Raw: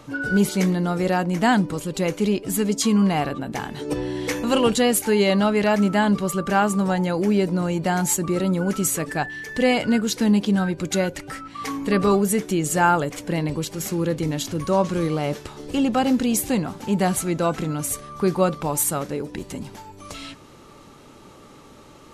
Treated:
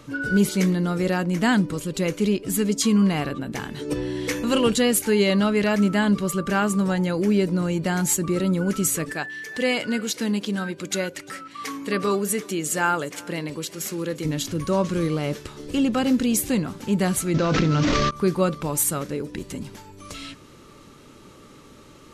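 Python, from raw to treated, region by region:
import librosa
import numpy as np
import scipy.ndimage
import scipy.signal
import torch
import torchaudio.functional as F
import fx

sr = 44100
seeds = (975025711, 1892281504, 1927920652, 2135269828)

y = fx.chain(x, sr, fx.highpass(hz=390.0, slope=6),
    fx.echo_single(ms=350, db=-23.5), at=(9.13, 14.25))
y = fx.chain(y, sr, fx.cvsd(bps=32000),
    fx.hum_notches(base_hz=60, count=8),
    fx.env_flatten(amount_pct=100), at=(17.34, 18.11))
y = fx.peak_eq(y, sr, hz=780.0, db=-8.0, octaves=0.67)
y = fx.end_taper(y, sr, db_per_s=500.0)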